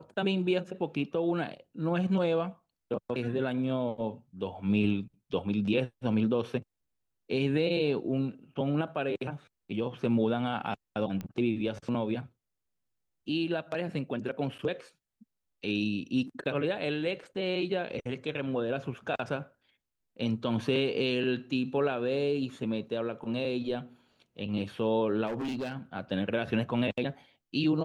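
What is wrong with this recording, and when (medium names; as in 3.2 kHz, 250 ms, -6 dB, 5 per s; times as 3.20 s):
11.21 s: pop -24 dBFS
25.26–25.77 s: clipped -30 dBFS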